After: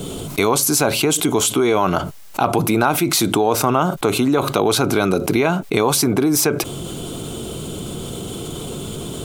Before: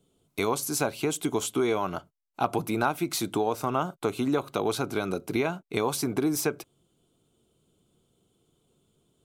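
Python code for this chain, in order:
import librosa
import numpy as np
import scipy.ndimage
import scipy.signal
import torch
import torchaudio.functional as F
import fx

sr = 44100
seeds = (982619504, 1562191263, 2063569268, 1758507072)

y = fx.env_flatten(x, sr, amount_pct=70)
y = F.gain(torch.from_numpy(y), 7.0).numpy()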